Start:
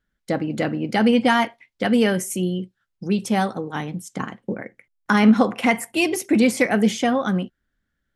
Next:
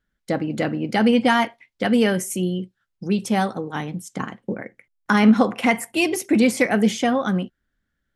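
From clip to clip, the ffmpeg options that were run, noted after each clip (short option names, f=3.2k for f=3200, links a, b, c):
-af anull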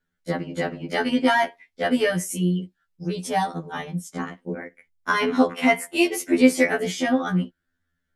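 -af "afftfilt=real='re*2*eq(mod(b,4),0)':imag='im*2*eq(mod(b,4),0)':win_size=2048:overlap=0.75,volume=1dB"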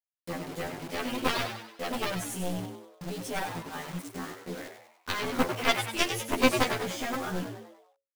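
-filter_complex "[0:a]acrusher=bits=5:mix=0:aa=0.000001,aeval=exprs='0.708*(cos(1*acos(clip(val(0)/0.708,-1,1)))-cos(1*PI/2))+0.178*(cos(4*acos(clip(val(0)/0.708,-1,1)))-cos(4*PI/2))+0.2*(cos(7*acos(clip(val(0)/0.708,-1,1)))-cos(7*PI/2))':c=same,asplit=2[a][b];[b]asplit=5[c][d][e][f][g];[c]adelay=97,afreqshift=110,volume=-8dB[h];[d]adelay=194,afreqshift=220,volume=-14.6dB[i];[e]adelay=291,afreqshift=330,volume=-21.1dB[j];[f]adelay=388,afreqshift=440,volume=-27.7dB[k];[g]adelay=485,afreqshift=550,volume=-34.2dB[l];[h][i][j][k][l]amix=inputs=5:normalize=0[m];[a][m]amix=inputs=2:normalize=0,volume=-7dB"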